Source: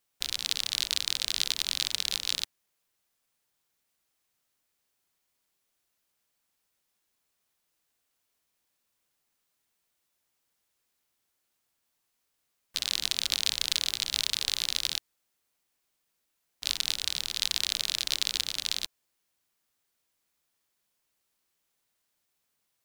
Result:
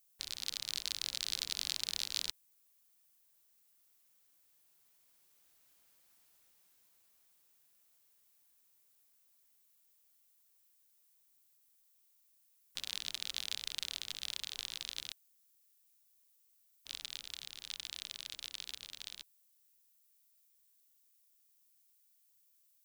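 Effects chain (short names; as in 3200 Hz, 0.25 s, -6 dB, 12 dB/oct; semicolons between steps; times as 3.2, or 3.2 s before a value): Doppler pass-by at 5.97, 20 m/s, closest 19 m; added noise violet -77 dBFS; gain +6 dB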